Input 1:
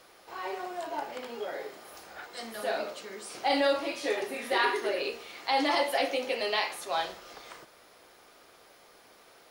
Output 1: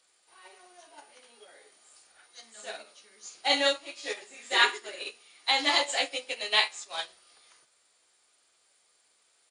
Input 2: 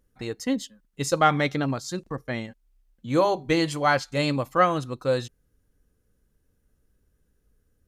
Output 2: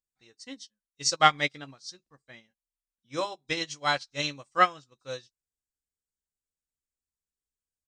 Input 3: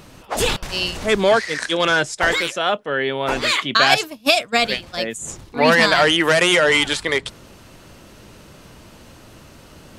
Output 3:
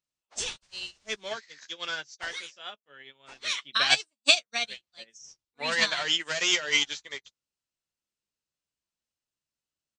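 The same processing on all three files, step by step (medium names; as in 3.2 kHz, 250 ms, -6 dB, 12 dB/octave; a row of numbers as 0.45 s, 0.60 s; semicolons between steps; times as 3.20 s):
knee-point frequency compression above 3.6 kHz 1.5:1; pre-emphasis filter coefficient 0.9; doubling 14 ms -10 dB; upward expansion 2.5:1, over -50 dBFS; normalise loudness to -27 LUFS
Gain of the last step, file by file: +18.0 dB, +16.0 dB, +6.5 dB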